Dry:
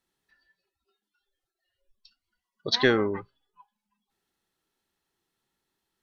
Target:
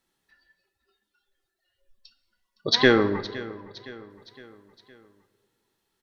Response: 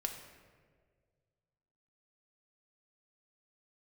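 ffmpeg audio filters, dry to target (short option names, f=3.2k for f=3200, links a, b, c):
-filter_complex "[0:a]aecho=1:1:513|1026|1539|2052:0.126|0.0629|0.0315|0.0157,asplit=2[a][b];[1:a]atrim=start_sample=2205[c];[b][c]afir=irnorm=-1:irlink=0,volume=-3.5dB[d];[a][d]amix=inputs=2:normalize=0"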